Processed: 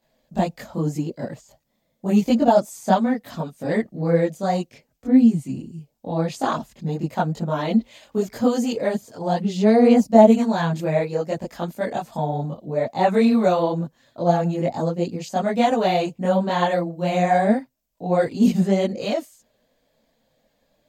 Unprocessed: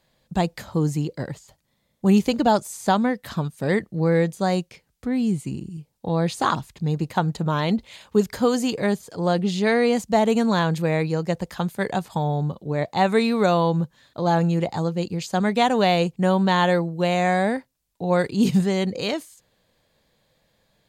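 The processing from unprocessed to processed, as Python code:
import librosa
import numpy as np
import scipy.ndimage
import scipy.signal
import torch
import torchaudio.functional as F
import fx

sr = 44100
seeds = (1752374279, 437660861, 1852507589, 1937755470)

y = fx.graphic_eq_15(x, sr, hz=(250, 630, 4000, 10000), db=(10, 10, -4, -10))
y = fx.chorus_voices(y, sr, voices=6, hz=0.84, base_ms=22, depth_ms=4.8, mix_pct=65)
y = fx.high_shelf(y, sr, hz=3600.0, db=9.5)
y = y * librosa.db_to_amplitude(-3.0)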